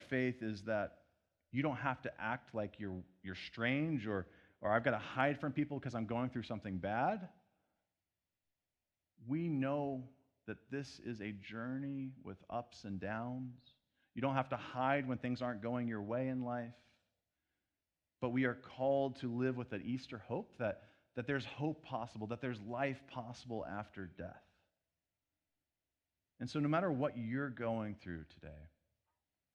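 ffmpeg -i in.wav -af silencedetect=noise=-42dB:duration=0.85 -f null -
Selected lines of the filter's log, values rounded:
silence_start: 7.25
silence_end: 9.28 | silence_duration: 2.03
silence_start: 16.68
silence_end: 18.22 | silence_duration: 1.54
silence_start: 24.32
silence_end: 26.41 | silence_duration: 2.09
silence_start: 28.47
silence_end: 29.55 | silence_duration: 1.07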